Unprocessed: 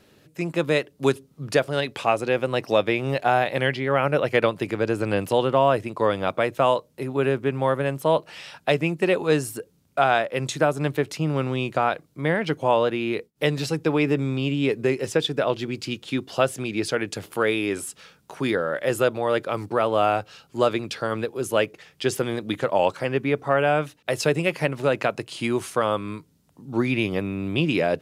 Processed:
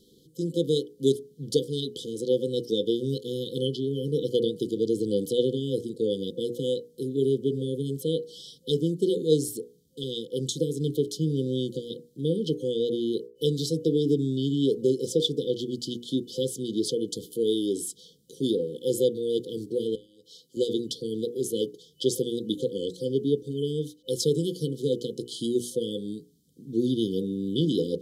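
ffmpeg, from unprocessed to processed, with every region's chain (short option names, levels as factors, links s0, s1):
-filter_complex "[0:a]asettb=1/sr,asplit=3[s0][s1][s2];[s0]atrim=end=19.954[s3];[s1]atrim=start=19.95:end=20.57,asetpts=PTS-STARTPTS,afade=t=in:d=0.004:c=qsin,afade=t=out:st=0.616:d=0.004:c=qsin,highpass=f=380:p=1,acompressor=threshold=0.0158:ratio=20:attack=3.2:release=140:knee=1:detection=peak[s4];[s2]atrim=start=20.566[s5];[s3][s4]acrossfade=d=0.004:c1=hsin:c2=qsin[s6];[s6][s5]acrossfade=d=0.004:c1=qsin:c2=hsin,afftfilt=real='re*(1-between(b*sr/4096,520,3000))':imag='im*(1-between(b*sr/4096,520,3000))':win_size=4096:overlap=0.75,equalizer=f=100:w=3:g=-12,bandreject=f=60:t=h:w=6,bandreject=f=120:t=h:w=6,bandreject=f=180:t=h:w=6,bandreject=f=240:t=h:w=6,bandreject=f=300:t=h:w=6,bandreject=f=360:t=h:w=6,bandreject=f=420:t=h:w=6,bandreject=f=480:t=h:w=6"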